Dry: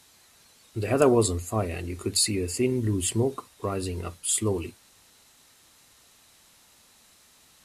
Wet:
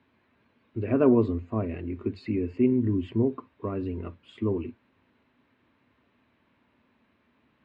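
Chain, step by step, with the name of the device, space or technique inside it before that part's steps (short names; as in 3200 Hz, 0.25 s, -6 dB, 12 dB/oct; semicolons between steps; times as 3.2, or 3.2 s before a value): bass cabinet (speaker cabinet 85–2100 Hz, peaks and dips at 160 Hz -4 dB, 250 Hz +7 dB, 500 Hz -4 dB, 770 Hz -10 dB, 1300 Hz -8 dB, 1900 Hz -6 dB)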